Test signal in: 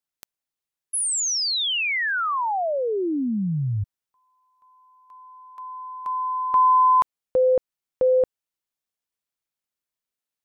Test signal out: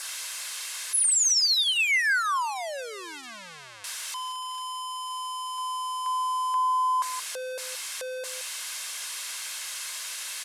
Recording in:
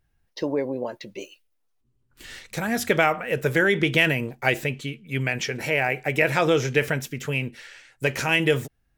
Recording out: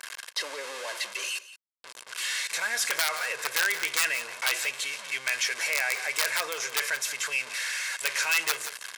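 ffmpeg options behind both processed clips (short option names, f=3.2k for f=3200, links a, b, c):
-af "aeval=exprs='val(0)+0.5*0.0562*sgn(val(0))':c=same,lowpass=f=11k:w=0.5412,lowpass=f=11k:w=1.3066,aecho=1:1:1.9:0.38,aeval=exprs='(mod(2.82*val(0)+1,2)-1)/2.82':c=same,anlmdn=0.158,aecho=1:1:173:0.15,adynamicequalizer=threshold=0.0126:dfrequency=3100:dqfactor=2.4:tfrequency=3100:tqfactor=2.4:attack=5:release=100:ratio=0.375:range=3:mode=cutabove:tftype=bell,acompressor=threshold=-17dB:ratio=6:attack=1.2:release=22:knee=6,highpass=1.3k"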